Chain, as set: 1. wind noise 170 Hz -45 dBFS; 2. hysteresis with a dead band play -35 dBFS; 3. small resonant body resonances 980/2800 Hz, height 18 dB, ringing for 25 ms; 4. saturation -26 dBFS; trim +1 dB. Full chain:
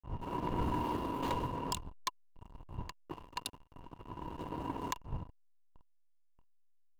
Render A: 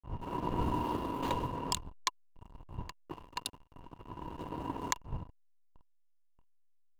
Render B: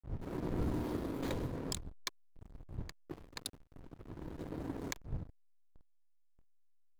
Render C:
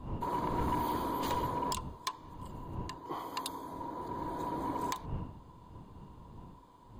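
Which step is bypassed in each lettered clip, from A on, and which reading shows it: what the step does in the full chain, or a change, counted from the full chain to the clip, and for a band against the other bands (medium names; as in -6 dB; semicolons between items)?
4, distortion -14 dB; 3, 1 kHz band -12.5 dB; 2, distortion -4 dB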